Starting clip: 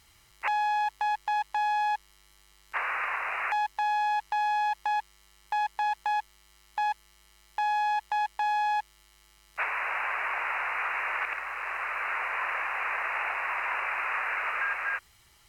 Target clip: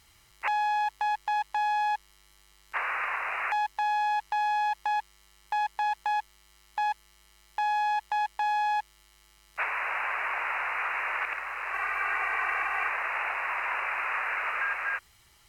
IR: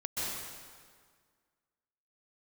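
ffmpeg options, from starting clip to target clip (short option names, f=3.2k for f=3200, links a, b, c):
-filter_complex "[0:a]asettb=1/sr,asplit=3[a][b][c];[a]atrim=end=11.734[d];[b]atrim=start=11.73:end=12.89,asetpts=PTS-STARTPTS,afade=t=in:d=0.004:c=qsin,afade=t=out:st=1.156:d=0.004:c=qsin,aecho=1:1:2.6:0.78,atrim=end_sample=51156[e];[c]atrim=start=12.886[f];[d][e]acrossfade=d=0.004:c1=hsin:c2=qsin[g];[g][f]acrossfade=d=0.004:c1=qsin:c2=hsin"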